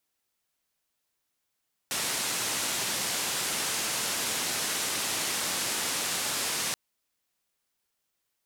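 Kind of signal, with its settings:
band-limited noise 120–9,900 Hz, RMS −30.5 dBFS 4.83 s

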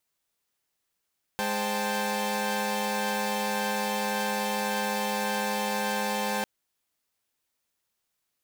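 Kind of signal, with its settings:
held notes G#3/C5/G5/A5 saw, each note −30 dBFS 5.05 s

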